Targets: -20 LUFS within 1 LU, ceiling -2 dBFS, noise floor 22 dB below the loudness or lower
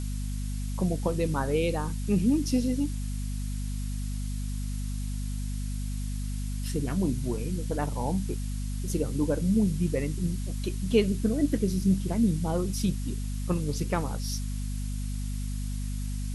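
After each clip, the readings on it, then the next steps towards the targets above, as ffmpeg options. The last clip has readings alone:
hum 50 Hz; harmonics up to 250 Hz; hum level -29 dBFS; noise floor -32 dBFS; noise floor target -52 dBFS; loudness -30.0 LUFS; peak -10.0 dBFS; loudness target -20.0 LUFS
-> -af "bandreject=f=50:t=h:w=6,bandreject=f=100:t=h:w=6,bandreject=f=150:t=h:w=6,bandreject=f=200:t=h:w=6,bandreject=f=250:t=h:w=6"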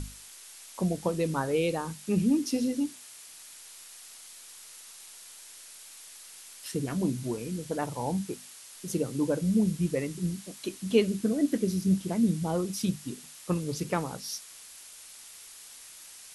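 hum none; noise floor -49 dBFS; noise floor target -52 dBFS
-> -af "afftdn=nr=6:nf=-49"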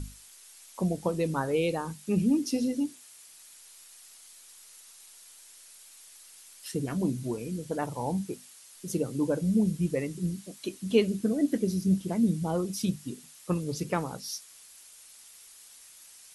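noise floor -53 dBFS; loudness -30.0 LUFS; peak -10.5 dBFS; loudness target -20.0 LUFS
-> -af "volume=10dB,alimiter=limit=-2dB:level=0:latency=1"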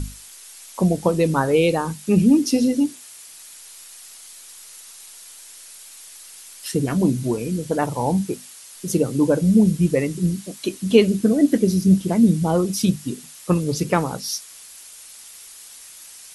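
loudness -20.0 LUFS; peak -2.0 dBFS; noise floor -43 dBFS

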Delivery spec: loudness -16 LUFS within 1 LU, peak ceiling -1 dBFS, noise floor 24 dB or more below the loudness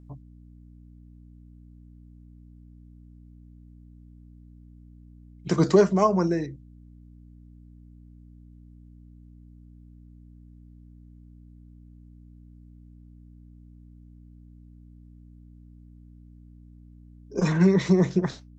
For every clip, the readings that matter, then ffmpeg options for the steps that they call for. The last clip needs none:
hum 60 Hz; harmonics up to 300 Hz; hum level -47 dBFS; loudness -22.5 LUFS; peak -6.0 dBFS; loudness target -16.0 LUFS
-> -af "bandreject=f=60:t=h:w=4,bandreject=f=120:t=h:w=4,bandreject=f=180:t=h:w=4,bandreject=f=240:t=h:w=4,bandreject=f=300:t=h:w=4"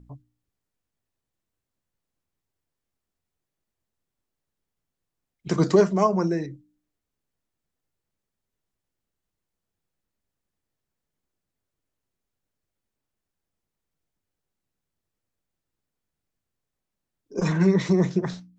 hum none; loudness -22.5 LUFS; peak -6.5 dBFS; loudness target -16.0 LUFS
-> -af "volume=6.5dB,alimiter=limit=-1dB:level=0:latency=1"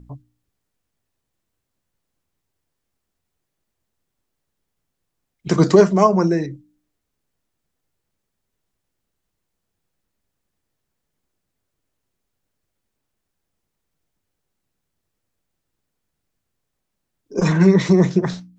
loudness -16.0 LUFS; peak -1.0 dBFS; noise floor -78 dBFS

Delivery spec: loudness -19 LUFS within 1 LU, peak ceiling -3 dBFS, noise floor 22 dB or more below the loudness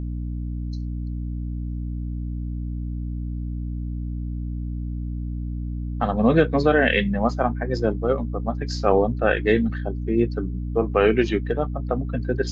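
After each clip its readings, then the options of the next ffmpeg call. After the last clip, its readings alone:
hum 60 Hz; harmonics up to 300 Hz; hum level -26 dBFS; loudness -24.5 LUFS; peak -4.5 dBFS; loudness target -19.0 LUFS
-> -af "bandreject=f=60:t=h:w=6,bandreject=f=120:t=h:w=6,bandreject=f=180:t=h:w=6,bandreject=f=240:t=h:w=6,bandreject=f=300:t=h:w=6"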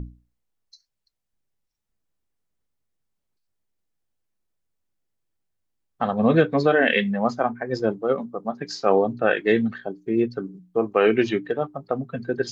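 hum none; loudness -23.0 LUFS; peak -5.5 dBFS; loudness target -19.0 LUFS
-> -af "volume=4dB,alimiter=limit=-3dB:level=0:latency=1"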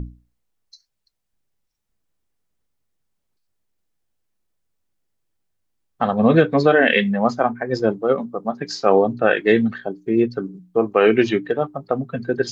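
loudness -19.0 LUFS; peak -3.0 dBFS; noise floor -76 dBFS

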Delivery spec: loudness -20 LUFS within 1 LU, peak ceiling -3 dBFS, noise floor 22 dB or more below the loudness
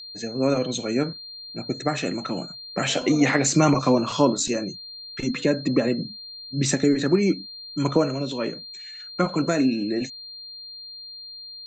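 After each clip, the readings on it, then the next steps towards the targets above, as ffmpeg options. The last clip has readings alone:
steady tone 4200 Hz; tone level -37 dBFS; loudness -24.0 LUFS; peak -6.0 dBFS; loudness target -20.0 LUFS
-> -af "bandreject=f=4.2k:w=30"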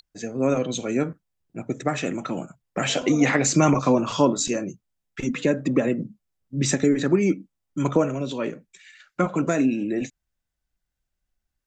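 steady tone none; loudness -24.0 LUFS; peak -6.0 dBFS; loudness target -20.0 LUFS
-> -af "volume=4dB,alimiter=limit=-3dB:level=0:latency=1"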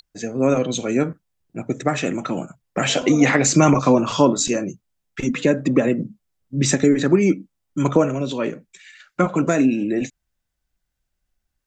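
loudness -20.0 LUFS; peak -3.0 dBFS; noise floor -78 dBFS

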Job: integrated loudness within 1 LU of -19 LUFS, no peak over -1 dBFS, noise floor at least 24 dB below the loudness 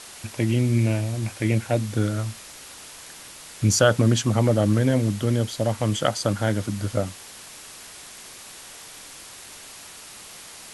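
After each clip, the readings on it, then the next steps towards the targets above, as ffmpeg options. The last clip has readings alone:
noise floor -43 dBFS; noise floor target -47 dBFS; loudness -23.0 LUFS; peak -4.0 dBFS; loudness target -19.0 LUFS
-> -af "afftdn=nr=6:nf=-43"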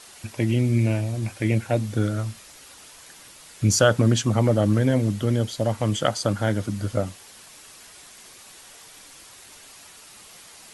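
noise floor -47 dBFS; loudness -23.0 LUFS; peak -4.0 dBFS; loudness target -19.0 LUFS
-> -af "volume=4dB,alimiter=limit=-1dB:level=0:latency=1"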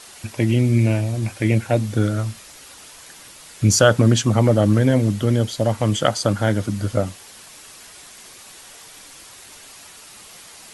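loudness -19.0 LUFS; peak -1.0 dBFS; noise floor -43 dBFS

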